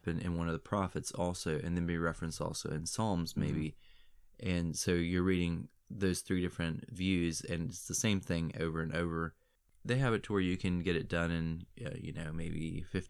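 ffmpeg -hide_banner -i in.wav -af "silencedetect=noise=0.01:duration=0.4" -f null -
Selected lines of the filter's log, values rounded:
silence_start: 3.70
silence_end: 4.43 | silence_duration: 0.73
silence_start: 9.29
silence_end: 9.85 | silence_duration: 0.57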